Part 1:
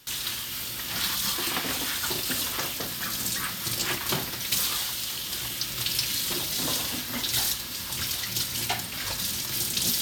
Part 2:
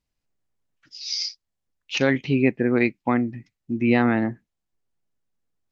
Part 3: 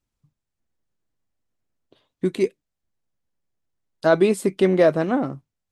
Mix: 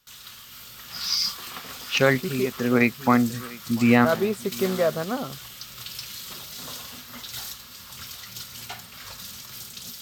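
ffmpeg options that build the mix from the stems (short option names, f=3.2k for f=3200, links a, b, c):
-filter_complex "[0:a]volume=-13dB[a];[1:a]volume=-1dB,asplit=2[b][c];[c]volume=-21.5dB[d];[2:a]volume=-10dB,asplit=2[e][f];[f]apad=whole_len=252069[g];[b][g]sidechaincompress=threshold=-37dB:ratio=6:attack=5.9:release=332[h];[d]aecho=0:1:696:1[i];[a][h][e][i]amix=inputs=4:normalize=0,superequalizer=6b=0.355:10b=1.78:16b=0.631,dynaudnorm=f=220:g=5:m=4dB"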